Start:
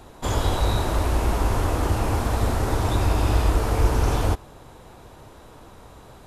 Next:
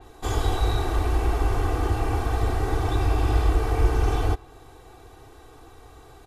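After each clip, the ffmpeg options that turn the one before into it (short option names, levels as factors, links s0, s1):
-af "aecho=1:1:2.6:0.79,adynamicequalizer=threshold=0.00501:dfrequency=4400:dqfactor=0.7:tfrequency=4400:tqfactor=0.7:attack=5:release=100:ratio=0.375:range=3:mode=cutabove:tftype=highshelf,volume=0.596"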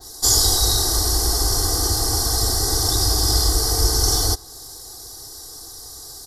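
-af "superequalizer=12b=0.282:14b=2.51,aexciter=amount=12.4:drive=6.4:freq=4200"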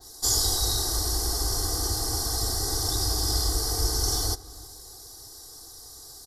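-filter_complex "[0:a]asplit=2[s0][s1];[s1]adelay=317,lowpass=f=2000:p=1,volume=0.126,asplit=2[s2][s3];[s3]adelay=317,lowpass=f=2000:p=1,volume=0.41,asplit=2[s4][s5];[s5]adelay=317,lowpass=f=2000:p=1,volume=0.41[s6];[s0][s2][s4][s6]amix=inputs=4:normalize=0,volume=0.422"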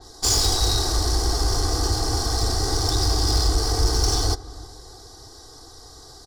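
-af "adynamicsmooth=sensitivity=2:basefreq=4300,aeval=exprs='0.266*sin(PI/2*1.58*val(0)/0.266)':c=same"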